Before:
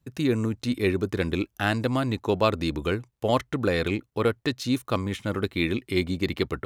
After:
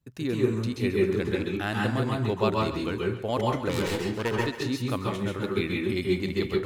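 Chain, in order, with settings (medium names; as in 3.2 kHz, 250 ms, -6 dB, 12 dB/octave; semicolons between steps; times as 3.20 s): 3.69–4.40 s: self-modulated delay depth 0.35 ms; thinning echo 137 ms, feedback 53%, level -12.5 dB; reverberation RT60 0.35 s, pre-delay 123 ms, DRR -2 dB; trim -6 dB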